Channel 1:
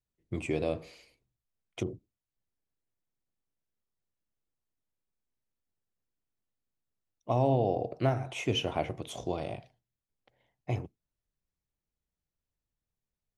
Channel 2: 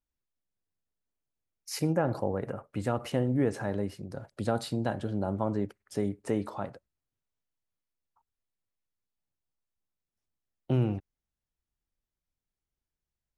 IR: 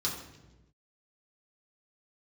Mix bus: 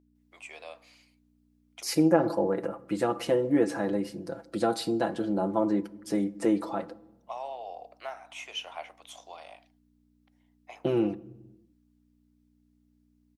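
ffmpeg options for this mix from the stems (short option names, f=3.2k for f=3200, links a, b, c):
-filter_complex "[0:a]highpass=f=760:w=0.5412,highpass=f=760:w=1.3066,volume=-3.5dB[a];[1:a]aecho=1:1:6:0.75,adelay=150,volume=1.5dB,asplit=2[b][c];[c]volume=-20dB[d];[2:a]atrim=start_sample=2205[e];[d][e]afir=irnorm=-1:irlink=0[f];[a][b][f]amix=inputs=3:normalize=0,aeval=exprs='val(0)+0.00126*(sin(2*PI*60*n/s)+sin(2*PI*2*60*n/s)/2+sin(2*PI*3*60*n/s)/3+sin(2*PI*4*60*n/s)/4+sin(2*PI*5*60*n/s)/5)':c=same,lowshelf=f=190:t=q:w=1.5:g=-10"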